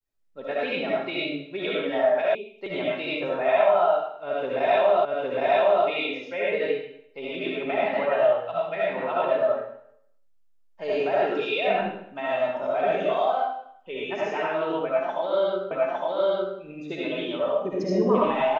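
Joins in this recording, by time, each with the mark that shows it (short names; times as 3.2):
2.35 sound cut off
5.05 repeat of the last 0.81 s
15.71 repeat of the last 0.86 s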